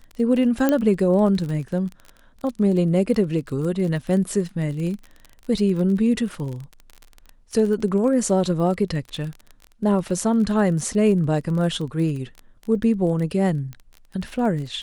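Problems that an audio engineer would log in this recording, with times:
crackle 28 per s -29 dBFS
0.69 s: pop -7 dBFS

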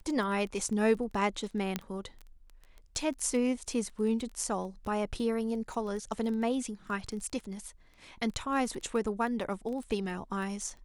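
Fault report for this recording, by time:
crackle 12 per s -37 dBFS
1.76 s: pop -16 dBFS

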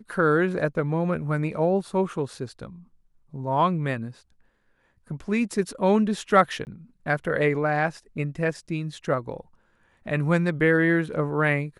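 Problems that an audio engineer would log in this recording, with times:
6.65–6.67 s: dropout 19 ms

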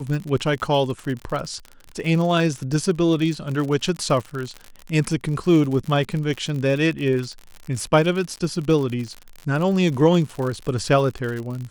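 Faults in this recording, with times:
crackle 60 per s -27 dBFS

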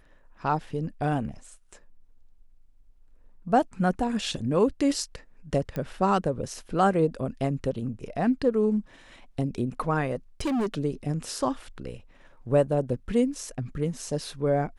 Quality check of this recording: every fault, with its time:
5.76 s: pop -20 dBFS
10.40–10.74 s: clipped -23.5 dBFS

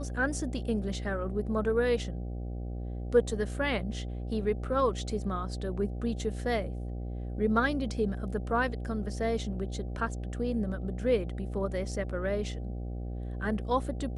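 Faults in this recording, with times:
buzz 60 Hz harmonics 13 -36 dBFS

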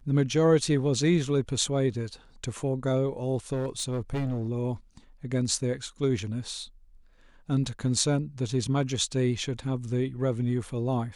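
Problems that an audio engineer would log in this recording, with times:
3.52–4.49 s: clipped -25.5 dBFS

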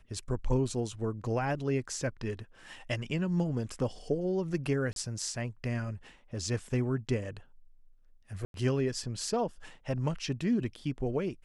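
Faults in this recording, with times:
4.93–4.96 s: dropout 32 ms
8.45–8.54 s: dropout 92 ms

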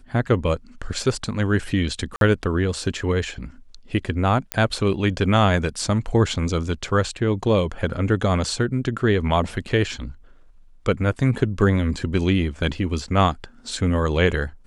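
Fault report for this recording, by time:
2.16–2.21 s: dropout 52 ms
4.52 s: pop -5 dBFS

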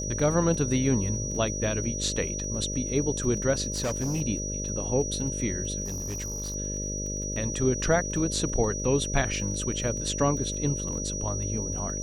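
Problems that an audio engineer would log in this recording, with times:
buzz 50 Hz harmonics 12 -34 dBFS
crackle 23 per s -36 dBFS
whine 5.8 kHz -33 dBFS
3.72–4.22 s: clipped -24.5 dBFS
5.84–6.56 s: clipped -29.5 dBFS

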